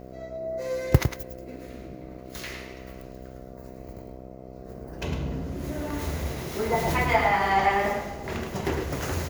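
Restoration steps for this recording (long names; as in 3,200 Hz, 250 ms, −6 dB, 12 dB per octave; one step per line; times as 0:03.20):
hum removal 64.2 Hz, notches 11
echo removal 106 ms −7.5 dB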